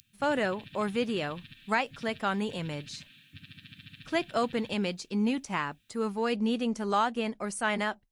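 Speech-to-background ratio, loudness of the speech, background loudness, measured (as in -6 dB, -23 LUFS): 19.0 dB, -31.0 LUFS, -50.0 LUFS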